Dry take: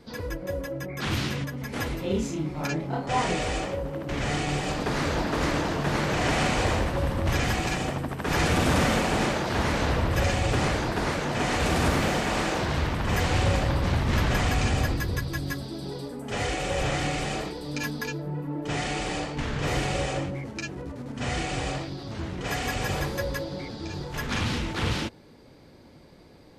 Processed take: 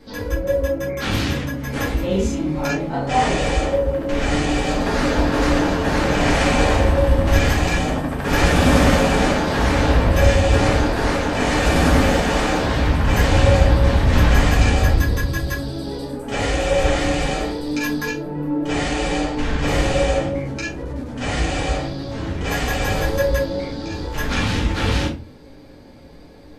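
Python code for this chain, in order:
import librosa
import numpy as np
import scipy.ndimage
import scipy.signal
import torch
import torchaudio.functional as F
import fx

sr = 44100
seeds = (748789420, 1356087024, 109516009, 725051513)

y = fx.room_shoebox(x, sr, seeds[0], volume_m3=130.0, walls='furnished', distance_m=2.2)
y = F.gain(torch.from_numpy(y), 1.5).numpy()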